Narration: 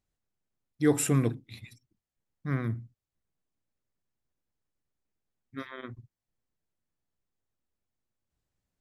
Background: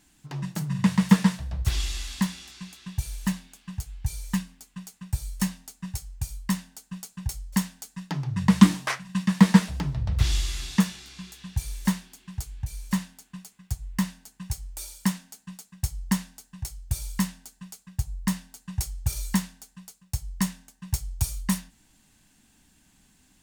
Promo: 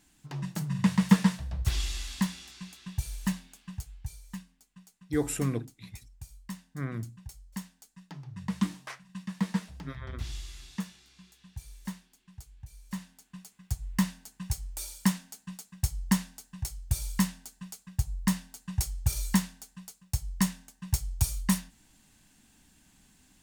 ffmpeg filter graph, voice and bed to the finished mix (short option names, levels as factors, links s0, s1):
-filter_complex "[0:a]adelay=4300,volume=0.596[s0];[1:a]volume=3.35,afade=t=out:st=3.6:d=0.61:silence=0.281838,afade=t=in:st=12.84:d=1.07:silence=0.211349[s1];[s0][s1]amix=inputs=2:normalize=0"